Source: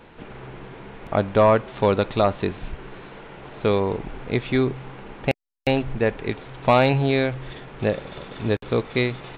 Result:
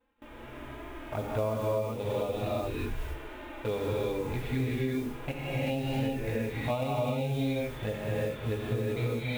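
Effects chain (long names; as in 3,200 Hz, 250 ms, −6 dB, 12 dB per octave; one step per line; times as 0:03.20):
fade-out on the ending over 0.64 s
mains-hum notches 50/100/150/200/250/300/350/400/450/500 Hz
notch comb filter 190 Hz
flanger swept by the level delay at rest 4.1 ms, full sweep at −17.5 dBFS
noise that follows the level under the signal 23 dB
in parallel at −0.5 dB: output level in coarse steps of 18 dB
on the sum: reverb whose tail is shaped and stops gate 410 ms rising, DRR −5 dB
downward compressor 16 to 1, threshold −21 dBFS, peak gain reduction 19 dB
harmonic and percussive parts rebalanced percussive −7 dB
noise gate with hold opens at −36 dBFS
level −4.5 dB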